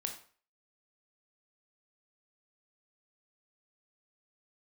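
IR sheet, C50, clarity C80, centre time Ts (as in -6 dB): 8.5 dB, 12.5 dB, 17 ms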